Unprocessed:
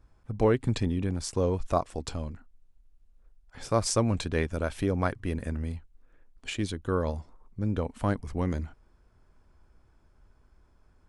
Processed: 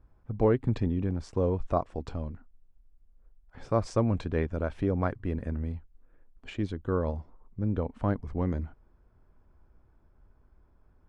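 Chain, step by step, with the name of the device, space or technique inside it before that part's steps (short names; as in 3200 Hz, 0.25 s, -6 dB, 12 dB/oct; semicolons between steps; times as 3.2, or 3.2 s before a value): through cloth (LPF 7000 Hz 12 dB/oct; high shelf 2700 Hz -17 dB)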